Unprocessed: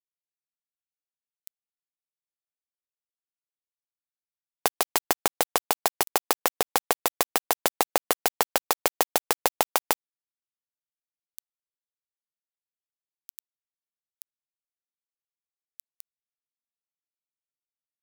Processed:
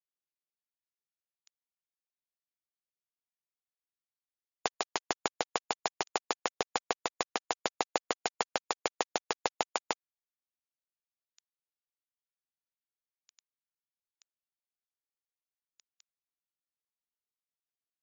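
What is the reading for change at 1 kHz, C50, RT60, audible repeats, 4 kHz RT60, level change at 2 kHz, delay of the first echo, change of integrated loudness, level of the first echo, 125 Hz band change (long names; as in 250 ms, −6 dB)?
−6.5 dB, no reverb audible, no reverb audible, no echo audible, no reverb audible, −6.5 dB, no echo audible, −9.0 dB, no echo audible, −6.5 dB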